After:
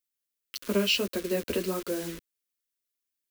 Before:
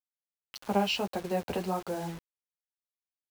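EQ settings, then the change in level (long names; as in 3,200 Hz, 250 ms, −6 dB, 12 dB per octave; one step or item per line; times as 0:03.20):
high-shelf EQ 10,000 Hz +7 dB
phaser with its sweep stopped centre 330 Hz, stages 4
+6.0 dB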